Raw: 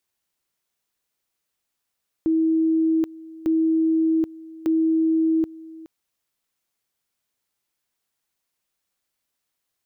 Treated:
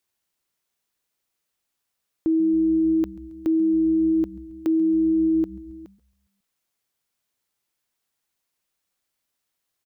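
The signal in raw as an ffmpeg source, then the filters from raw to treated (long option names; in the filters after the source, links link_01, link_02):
-f lavfi -i "aevalsrc='pow(10,(-16.5-20.5*gte(mod(t,1.2),0.78))/20)*sin(2*PI*322*t)':duration=3.6:sample_rate=44100"
-filter_complex "[0:a]asplit=5[link_01][link_02][link_03][link_04][link_05];[link_02]adelay=136,afreqshift=-130,volume=-23dB[link_06];[link_03]adelay=272,afreqshift=-260,volume=-27.4dB[link_07];[link_04]adelay=408,afreqshift=-390,volume=-31.9dB[link_08];[link_05]adelay=544,afreqshift=-520,volume=-36.3dB[link_09];[link_01][link_06][link_07][link_08][link_09]amix=inputs=5:normalize=0"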